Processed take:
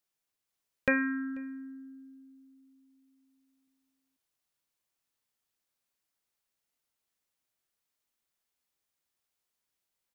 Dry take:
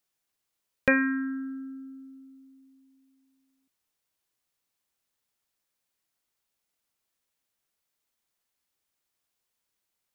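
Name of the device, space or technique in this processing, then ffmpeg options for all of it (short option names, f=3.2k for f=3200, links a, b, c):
ducked delay: -filter_complex "[0:a]asplit=3[a][b][c];[b]adelay=488,volume=-4.5dB[d];[c]apad=whole_len=469070[e];[d][e]sidechaincompress=threshold=-46dB:ratio=6:attack=16:release=1300[f];[a][f]amix=inputs=2:normalize=0,volume=-4.5dB"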